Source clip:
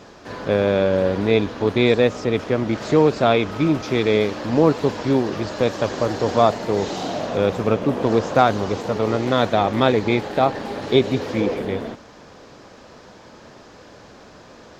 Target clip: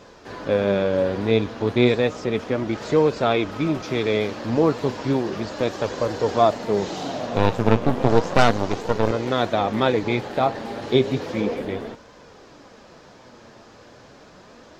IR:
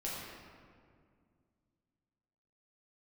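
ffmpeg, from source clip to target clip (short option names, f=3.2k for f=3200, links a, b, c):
-filter_complex "[0:a]asettb=1/sr,asplit=3[a][b][c];[a]atrim=end=7.364[d];[b]atrim=start=7.36:end=9.11,asetpts=PTS-STARTPTS,afade=t=in:d=0.004:c=qsin,afade=t=out:st=1.746:d=0.004:c=qsin,aeval=exprs='0.891*(cos(1*acos(clip(val(0)/0.891,-1,1)))-cos(1*PI/2))+0.224*(cos(6*acos(clip(val(0)/0.891,-1,1)))-cos(6*PI/2))':c=same[e];[c]atrim=start=9.106[f];[d][e]acrossfade=d=0.004:c1=hsin:c2=qsin[g];[g][f]acrossfade=d=0.004:c1=qsin:c2=hsin,flanger=delay=1.9:depth=7:regen=63:speed=0.33:shape=sinusoidal,volume=1.5dB"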